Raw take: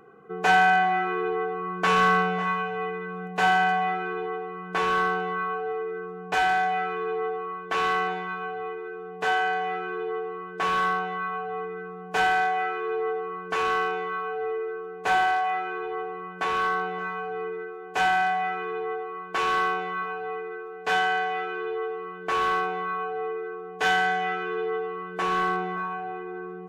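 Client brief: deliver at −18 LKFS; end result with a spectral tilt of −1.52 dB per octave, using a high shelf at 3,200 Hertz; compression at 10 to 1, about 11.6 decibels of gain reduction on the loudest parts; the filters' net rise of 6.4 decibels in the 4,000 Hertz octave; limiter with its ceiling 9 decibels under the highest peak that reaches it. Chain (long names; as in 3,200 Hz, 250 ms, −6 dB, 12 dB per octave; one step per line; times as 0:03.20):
high-shelf EQ 3,200 Hz +6 dB
parametric band 4,000 Hz +5 dB
downward compressor 10 to 1, threshold −26 dBFS
level +14.5 dB
brickwall limiter −10 dBFS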